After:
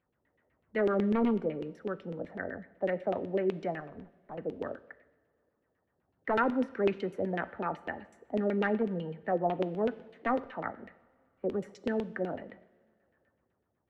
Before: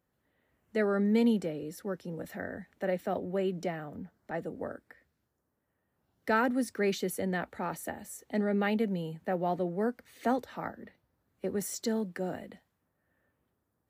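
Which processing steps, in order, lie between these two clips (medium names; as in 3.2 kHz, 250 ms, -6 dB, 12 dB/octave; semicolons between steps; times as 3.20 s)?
one-sided wavefolder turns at -22 dBFS; 3.80–4.38 s: valve stage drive 39 dB, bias 0.75; LFO low-pass saw down 8 Hz 370–3000 Hz; two-slope reverb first 0.9 s, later 3.1 s, from -18 dB, DRR 14.5 dB; trim -2 dB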